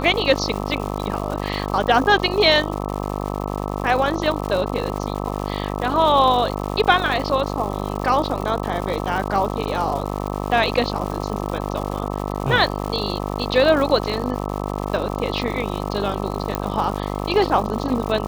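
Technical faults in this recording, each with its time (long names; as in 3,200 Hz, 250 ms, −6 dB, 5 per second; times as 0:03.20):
mains buzz 50 Hz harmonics 26 −26 dBFS
surface crackle 230 per second −27 dBFS
0:16.55: click −7 dBFS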